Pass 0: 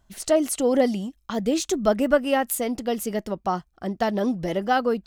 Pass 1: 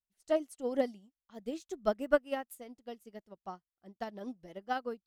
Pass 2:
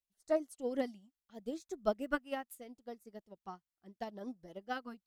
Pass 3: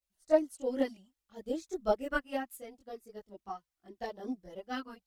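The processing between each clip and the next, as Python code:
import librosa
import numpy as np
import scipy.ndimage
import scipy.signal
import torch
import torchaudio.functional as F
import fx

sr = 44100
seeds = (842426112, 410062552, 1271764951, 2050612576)

y1 = fx.upward_expand(x, sr, threshold_db=-37.0, expansion=2.5)
y1 = F.gain(torch.from_numpy(y1), -6.0).numpy()
y2 = fx.filter_lfo_notch(y1, sr, shape='sine', hz=0.75, low_hz=430.0, high_hz=3100.0, q=2.4)
y2 = F.gain(torch.from_numpy(y2), -2.0).numpy()
y3 = fx.chorus_voices(y2, sr, voices=6, hz=0.54, base_ms=21, depth_ms=2.0, mix_pct=65)
y3 = F.gain(torch.from_numpy(y3), 6.5).numpy()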